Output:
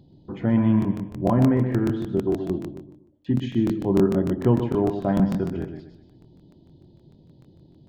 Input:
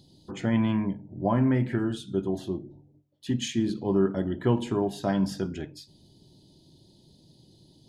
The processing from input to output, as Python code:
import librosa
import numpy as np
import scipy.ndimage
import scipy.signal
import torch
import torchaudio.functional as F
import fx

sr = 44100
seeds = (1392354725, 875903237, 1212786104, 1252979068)

y = fx.spacing_loss(x, sr, db_at_10k=44)
y = fx.echo_feedback(y, sr, ms=127, feedback_pct=39, wet_db=-8)
y = fx.buffer_crackle(y, sr, first_s=0.8, period_s=0.15, block=1024, kind='repeat')
y = y * librosa.db_to_amplitude(5.5)